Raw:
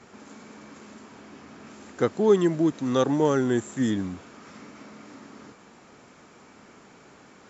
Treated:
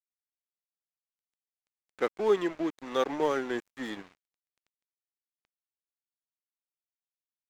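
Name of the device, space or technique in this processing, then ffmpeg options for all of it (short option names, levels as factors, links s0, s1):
pocket radio on a weak battery: -af "highpass=400,lowpass=4400,aeval=exprs='sgn(val(0))*max(abs(val(0))-0.0119,0)':c=same,equalizer=f=2200:t=o:w=0.49:g=4,volume=0.794"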